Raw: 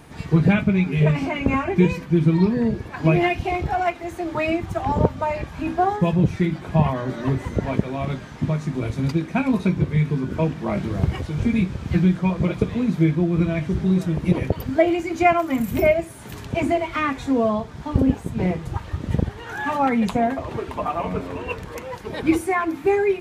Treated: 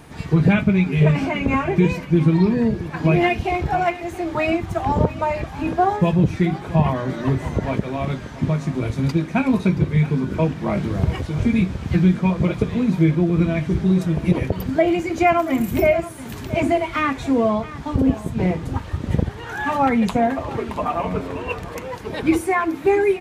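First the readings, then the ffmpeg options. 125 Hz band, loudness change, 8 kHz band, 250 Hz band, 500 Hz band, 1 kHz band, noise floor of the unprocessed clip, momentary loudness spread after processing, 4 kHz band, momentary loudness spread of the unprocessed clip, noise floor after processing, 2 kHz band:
+1.5 dB, +1.5 dB, n/a, +1.5 dB, +1.5 dB, +2.0 dB, -38 dBFS, 8 LU, +2.0 dB, 9 LU, -34 dBFS, +1.5 dB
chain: -filter_complex "[0:a]asplit=2[a][b];[b]aecho=0:1:676:0.15[c];[a][c]amix=inputs=2:normalize=0,alimiter=level_in=7.5dB:limit=-1dB:release=50:level=0:latency=1,volume=-5.5dB"

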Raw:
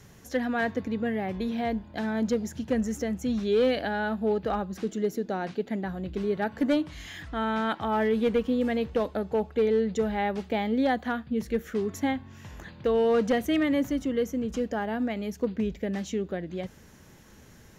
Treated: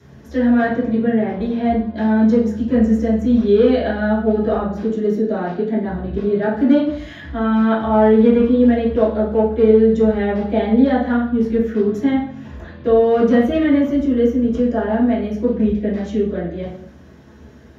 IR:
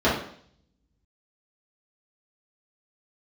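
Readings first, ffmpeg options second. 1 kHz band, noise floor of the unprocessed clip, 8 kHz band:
+7.5 dB, -52 dBFS, n/a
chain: -filter_complex "[1:a]atrim=start_sample=2205[a];[0:a][a]afir=irnorm=-1:irlink=0,volume=-12dB"

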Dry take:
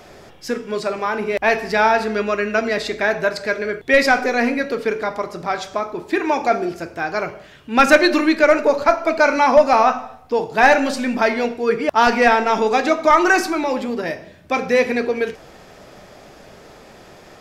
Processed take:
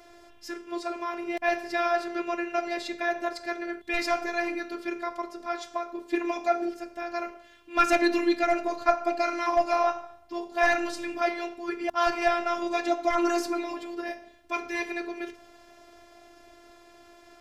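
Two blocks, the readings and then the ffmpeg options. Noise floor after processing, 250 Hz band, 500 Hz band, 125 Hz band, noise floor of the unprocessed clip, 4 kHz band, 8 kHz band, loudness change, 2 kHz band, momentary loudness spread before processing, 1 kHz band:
-54 dBFS, -9.0 dB, -11.5 dB, under -20 dB, -44 dBFS, -10.5 dB, -10.0 dB, -10.5 dB, -12.5 dB, 12 LU, -10.0 dB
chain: -af "bandreject=f=72.68:t=h:w=4,bandreject=f=145.36:t=h:w=4,bandreject=f=218.04:t=h:w=4,bandreject=f=290.72:t=h:w=4,afftfilt=real='hypot(re,im)*cos(PI*b)':imag='0':win_size=512:overlap=0.75,volume=-6.5dB"

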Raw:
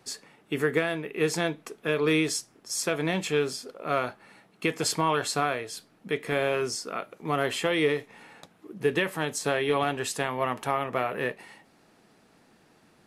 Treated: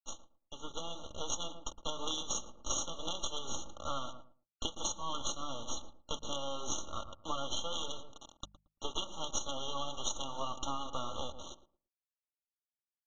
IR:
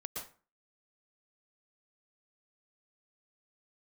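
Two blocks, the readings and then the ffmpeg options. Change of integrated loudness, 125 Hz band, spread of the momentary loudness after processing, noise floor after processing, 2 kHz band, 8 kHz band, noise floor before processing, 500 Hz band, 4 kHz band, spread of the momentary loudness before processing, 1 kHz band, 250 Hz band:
-11.5 dB, -16.0 dB, 12 LU, under -85 dBFS, -30.0 dB, -3.5 dB, -62 dBFS, -17.5 dB, -3.5 dB, 10 LU, -10.0 dB, -17.0 dB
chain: -filter_complex "[0:a]acrossover=split=490|1400[a][b][c];[c]acrusher=bits=5:mode=log:mix=0:aa=0.000001[d];[a][b][d]amix=inputs=3:normalize=0,aderivative,aresample=16000,acrusher=bits=6:dc=4:mix=0:aa=0.000001,aresample=44100,highshelf=f=5.6k:g=-6,asplit=2[e][f];[f]adelay=113,lowpass=f=980:p=1,volume=-12.5dB,asplit=2[g][h];[h]adelay=113,lowpass=f=980:p=1,volume=0.21,asplit=2[i][j];[j]adelay=113,lowpass=f=980:p=1,volume=0.21[k];[e][g][i][k]amix=inputs=4:normalize=0,dynaudnorm=f=460:g=5:m=16.5dB,bandreject=f=50:t=h:w=6,bandreject=f=100:t=h:w=6,bandreject=f=150:t=h:w=6,bandreject=f=200:t=h:w=6,aecho=1:1:3.5:0.52,acompressor=threshold=-31dB:ratio=12,afftfilt=real='re*eq(mod(floor(b*sr/1024/1400),2),0)':imag='im*eq(mod(floor(b*sr/1024/1400),2),0)':win_size=1024:overlap=0.75,volume=1.5dB"

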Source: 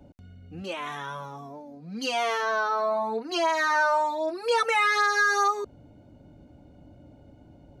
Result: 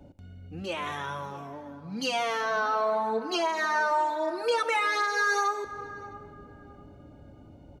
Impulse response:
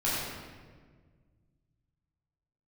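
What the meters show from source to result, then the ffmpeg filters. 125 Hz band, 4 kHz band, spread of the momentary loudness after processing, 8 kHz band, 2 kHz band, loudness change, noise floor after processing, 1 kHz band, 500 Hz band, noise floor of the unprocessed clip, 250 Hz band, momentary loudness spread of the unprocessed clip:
n/a, -1.5 dB, 17 LU, -2.5 dB, -3.0 dB, -3.0 dB, -51 dBFS, -2.0 dB, -1.5 dB, -53 dBFS, 0.0 dB, 18 LU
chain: -filter_complex "[0:a]asplit=2[a][b];[1:a]atrim=start_sample=2205,asetrate=25137,aresample=44100[c];[b][c]afir=irnorm=-1:irlink=0,volume=-25.5dB[d];[a][d]amix=inputs=2:normalize=0,alimiter=limit=-17.5dB:level=0:latency=1:release=478,asplit=2[e][f];[f]adelay=660,lowpass=f=1.2k:p=1,volume=-16.5dB,asplit=2[g][h];[h]adelay=660,lowpass=f=1.2k:p=1,volume=0.34,asplit=2[i][j];[j]adelay=660,lowpass=f=1.2k:p=1,volume=0.34[k];[e][g][i][k]amix=inputs=4:normalize=0"

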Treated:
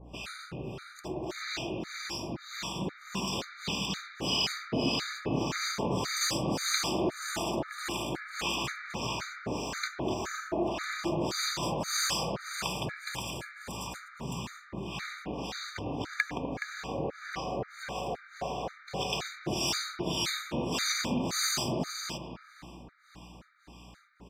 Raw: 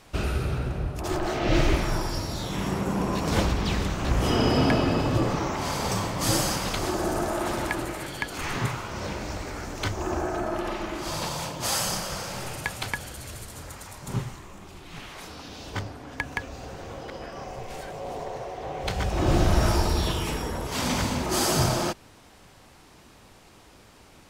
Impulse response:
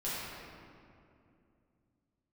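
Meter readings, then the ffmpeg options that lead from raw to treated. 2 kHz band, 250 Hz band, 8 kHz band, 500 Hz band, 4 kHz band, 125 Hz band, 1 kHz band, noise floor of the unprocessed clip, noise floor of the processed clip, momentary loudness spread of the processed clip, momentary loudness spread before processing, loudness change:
-3.0 dB, -6.0 dB, -2.5 dB, -6.0 dB, 0.0 dB, -11.0 dB, -6.0 dB, -52 dBFS, -54 dBFS, 12 LU, 16 LU, -5.5 dB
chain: -filter_complex "[0:a]acrossover=split=2400[a][b];[a]acompressor=threshold=-35dB:ratio=6[c];[b]volume=27.5dB,asoftclip=hard,volume=-27.5dB[d];[c][d]amix=inputs=2:normalize=0,aecho=1:1:250:0.668,acrossover=split=820[e][f];[e]aeval=exprs='val(0)*(1-1/2+1/2*cos(2*PI*1.7*n/s))':c=same[g];[f]aeval=exprs='val(0)*(1-1/2-1/2*cos(2*PI*1.7*n/s))':c=same[h];[g][h]amix=inputs=2:normalize=0,highpass=f=130:w=0.5412,highpass=f=130:w=1.3066,equalizer=f=11k:t=o:w=0.64:g=-14.5,aresample=32000,aresample=44100,aeval=exprs='val(0)+0.00224*(sin(2*PI*60*n/s)+sin(2*PI*2*60*n/s)/2+sin(2*PI*3*60*n/s)/3+sin(2*PI*4*60*n/s)/4+sin(2*PI*5*60*n/s)/5)':c=same,asplit=2[i][j];[1:a]atrim=start_sample=2205,lowpass=2.4k,adelay=95[k];[j][k]afir=irnorm=-1:irlink=0,volume=-11dB[l];[i][l]amix=inputs=2:normalize=0,dynaudnorm=f=380:g=17:m=5dB,afftfilt=real='re*gt(sin(2*PI*1.9*pts/sr)*(1-2*mod(floor(b*sr/1024/1200),2)),0)':imag='im*gt(sin(2*PI*1.9*pts/sr)*(1-2*mod(floor(b*sr/1024/1200),2)),0)':win_size=1024:overlap=0.75,volume=4dB"

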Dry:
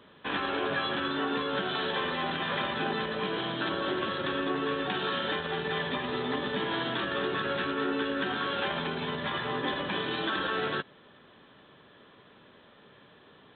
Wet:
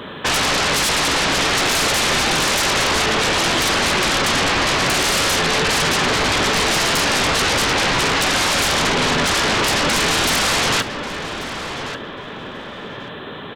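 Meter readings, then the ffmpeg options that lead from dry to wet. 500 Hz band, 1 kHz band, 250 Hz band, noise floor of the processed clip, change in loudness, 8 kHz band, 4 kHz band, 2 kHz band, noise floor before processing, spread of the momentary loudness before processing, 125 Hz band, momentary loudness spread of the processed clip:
+10.0 dB, +13.0 dB, +9.5 dB, -33 dBFS, +14.5 dB, n/a, +17.0 dB, +14.5 dB, -57 dBFS, 2 LU, +14.0 dB, 13 LU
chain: -filter_complex "[0:a]aeval=exprs='0.133*sin(PI/2*7.08*val(0)/0.133)':c=same,asplit=2[a][b];[b]adelay=1139,lowpass=f=2.9k:p=1,volume=-8.5dB,asplit=2[c][d];[d]adelay=1139,lowpass=f=2.9k:p=1,volume=0.28,asplit=2[e][f];[f]adelay=1139,lowpass=f=2.9k:p=1,volume=0.28[g];[a][c][e][g]amix=inputs=4:normalize=0,volume=2.5dB"

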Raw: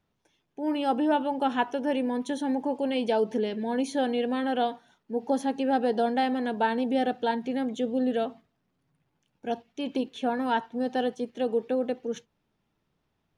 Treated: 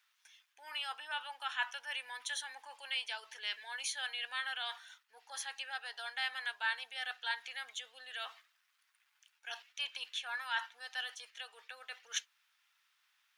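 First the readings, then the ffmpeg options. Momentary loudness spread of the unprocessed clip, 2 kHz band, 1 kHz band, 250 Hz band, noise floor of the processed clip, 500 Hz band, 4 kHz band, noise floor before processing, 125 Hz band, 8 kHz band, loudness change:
8 LU, 0.0 dB, -15.5 dB, under -40 dB, -77 dBFS, -31.5 dB, +1.5 dB, -77 dBFS, n/a, +4.5 dB, -11.5 dB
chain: -af "areverse,acompressor=threshold=-33dB:ratio=6,areverse,highpass=f=1.4k:w=0.5412,highpass=f=1.4k:w=1.3066,volume=10dB"

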